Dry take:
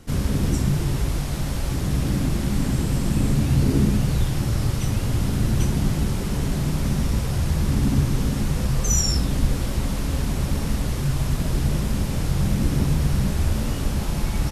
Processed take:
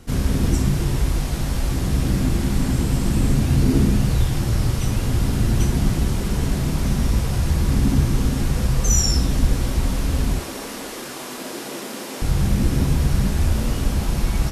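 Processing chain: 10.39–12.22 HPF 290 Hz 24 dB/oct; on a send: reverb, pre-delay 3 ms, DRR 8.5 dB; on the sum: gain +1.5 dB

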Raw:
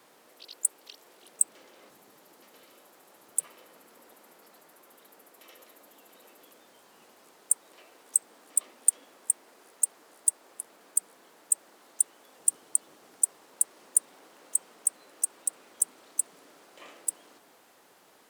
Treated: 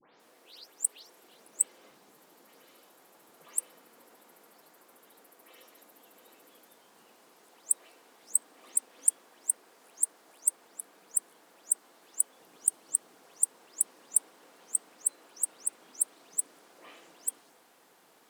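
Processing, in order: spectral delay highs late, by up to 0.197 s; gain -2 dB

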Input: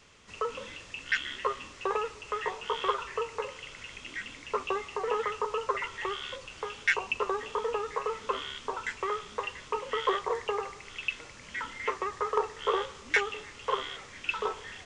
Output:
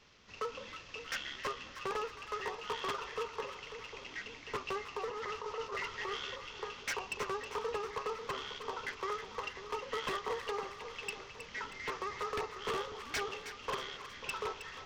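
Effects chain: CVSD 32 kbps; 5.07–6.31 negative-ratio compressor -34 dBFS, ratio -1; wavefolder -24 dBFS; on a send: split-band echo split 1000 Hz, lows 0.543 s, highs 0.317 s, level -10 dB; 11.73–12.43 on the sum: transient shaper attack -1 dB, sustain +3 dB; gain -5.5 dB

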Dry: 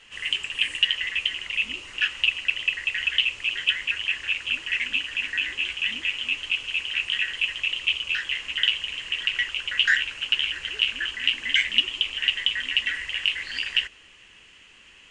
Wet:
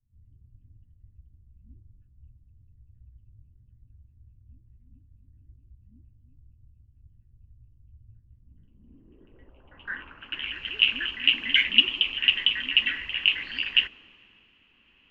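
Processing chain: low-pass sweep 110 Hz -> 2600 Hz, 8.29–10.61; ten-band EQ 250 Hz +7 dB, 500 Hz -4 dB, 2000 Hz -10 dB, 8000 Hz -4 dB; three-band expander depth 40%

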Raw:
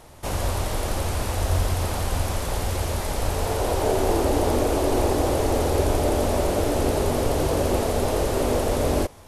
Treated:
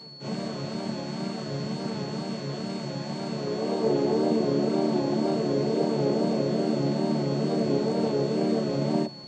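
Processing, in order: chord vocoder major triad, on D3; bell 900 Hz -7 dB 1.7 oct; reverse; upward compressor, threshold -37 dBFS; reverse; wow and flutter 86 cents; whine 4400 Hz -42 dBFS; on a send: reverse echo 36 ms -5 dB

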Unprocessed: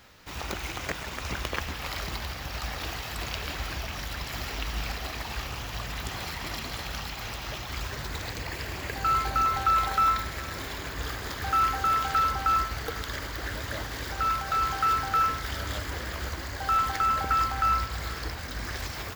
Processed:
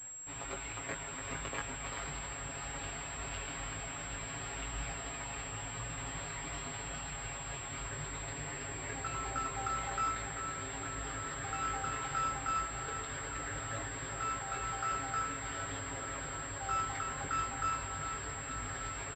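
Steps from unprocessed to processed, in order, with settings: comb 7.3 ms, depth 89%; reverse; upward compressor, threshold -41 dBFS; reverse; chorus 0.2 Hz, delay 17.5 ms, depth 3.7 ms; echo with dull and thin repeats by turns 0.389 s, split 2200 Hz, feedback 79%, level -7.5 dB; pulse-width modulation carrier 7600 Hz; gain -7 dB

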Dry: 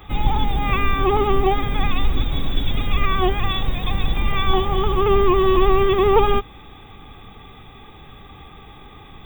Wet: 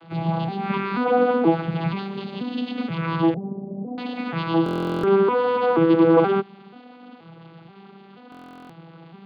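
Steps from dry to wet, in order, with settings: arpeggiated vocoder minor triad, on E3, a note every 0.48 s; 3.34–3.98 Chebyshev low-pass 660 Hz, order 4; stuck buffer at 4.64/8.3, samples 1024, times 16

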